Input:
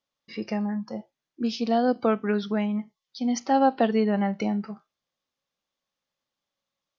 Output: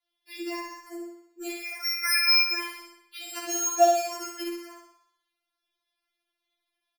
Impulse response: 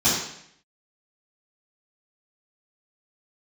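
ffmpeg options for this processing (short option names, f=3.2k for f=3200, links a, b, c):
-filter_complex "[0:a]asettb=1/sr,asplit=3[a][b][c];[a]atrim=end=1.514[d];[b]atrim=start=1.51:end=2.52,asetpts=PTS-STARTPTS,afade=t=in:d=0.004:c=qsin,afade=t=out:st=1.006:d=0.004:c=qsin,lowpass=f=2.2k:t=q:w=0.5098,lowpass=f=2.2k:t=q:w=0.6013,lowpass=f=2.2k:t=q:w=0.9,lowpass=f=2.2k:t=q:w=2.563,afreqshift=-2600[e];[c]atrim=start=2.516[f];[d][e]acrossfade=d=0.004:c1=hsin:c2=qsin[g];[g][f]acrossfade=d=0.004:c1=qsin:c2=hsin,acrossover=split=360|1200[h][i][j];[j]acontrast=65[k];[h][i][k]amix=inputs=3:normalize=0,acrusher=samples=6:mix=1:aa=0.000001,aecho=1:1:61|122|183|244|305|366|427:0.631|0.328|0.171|0.0887|0.0461|0.024|0.0125,asplit=2[l][m];[1:a]atrim=start_sample=2205,lowshelf=f=370:g=-9.5[n];[m][n]afir=irnorm=-1:irlink=0,volume=-20dB[o];[l][o]amix=inputs=2:normalize=0,adynamicequalizer=threshold=0.0158:dfrequency=360:dqfactor=3.1:tfrequency=360:tqfactor=3.1:attack=5:release=100:ratio=0.375:range=2.5:mode=boostabove:tftype=bell,afftfilt=real='re*4*eq(mod(b,16),0)':imag='im*4*eq(mod(b,16),0)':win_size=2048:overlap=0.75,volume=-3.5dB"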